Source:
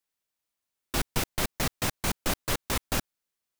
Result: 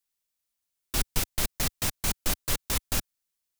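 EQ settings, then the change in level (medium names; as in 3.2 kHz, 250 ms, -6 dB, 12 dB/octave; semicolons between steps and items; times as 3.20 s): bass shelf 92 Hz +10 dB; treble shelf 3 kHz +9.5 dB; -5.5 dB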